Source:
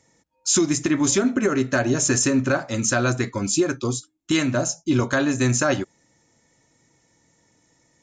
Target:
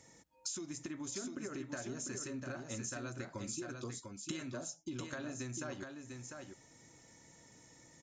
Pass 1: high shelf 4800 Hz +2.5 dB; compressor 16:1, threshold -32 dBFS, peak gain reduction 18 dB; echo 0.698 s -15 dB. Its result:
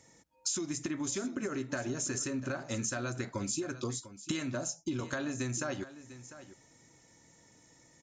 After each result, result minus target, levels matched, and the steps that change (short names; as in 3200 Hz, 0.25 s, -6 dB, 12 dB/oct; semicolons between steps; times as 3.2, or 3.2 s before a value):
compressor: peak gain reduction -8 dB; echo-to-direct -9.5 dB
change: compressor 16:1, threshold -40.5 dBFS, peak gain reduction 26 dB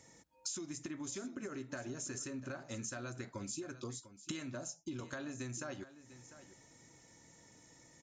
echo-to-direct -9.5 dB
change: echo 0.698 s -5.5 dB